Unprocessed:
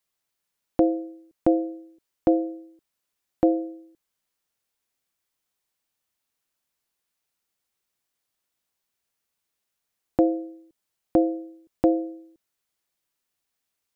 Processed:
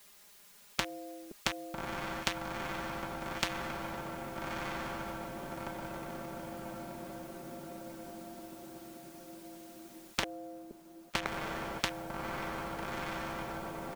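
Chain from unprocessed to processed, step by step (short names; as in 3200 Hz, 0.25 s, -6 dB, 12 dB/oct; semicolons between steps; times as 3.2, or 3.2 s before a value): 10.23–11.26 LPF 1200 Hz 24 dB/oct; comb 4.9 ms, depth 87%; overloaded stage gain 19.5 dB; diffused feedback echo 1.287 s, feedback 42%, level -9 dB; spectral compressor 10:1; gain +9 dB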